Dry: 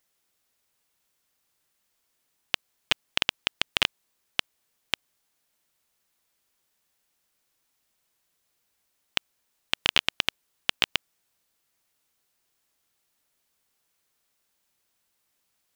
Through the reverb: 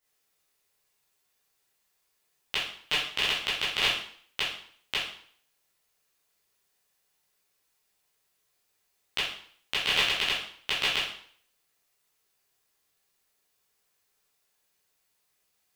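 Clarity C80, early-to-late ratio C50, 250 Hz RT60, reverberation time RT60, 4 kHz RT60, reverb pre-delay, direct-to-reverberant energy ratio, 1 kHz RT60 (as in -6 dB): 7.5 dB, 2.5 dB, 0.55 s, 0.55 s, 0.55 s, 11 ms, -10.0 dB, 0.55 s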